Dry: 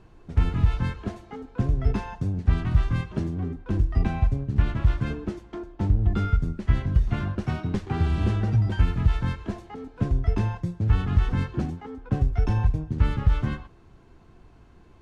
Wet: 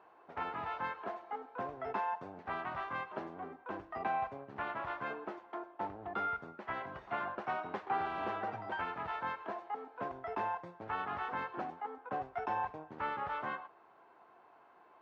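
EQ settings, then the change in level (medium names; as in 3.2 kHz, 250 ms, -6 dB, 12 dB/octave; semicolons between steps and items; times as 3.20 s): ladder band-pass 1 kHz, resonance 30%; +12.0 dB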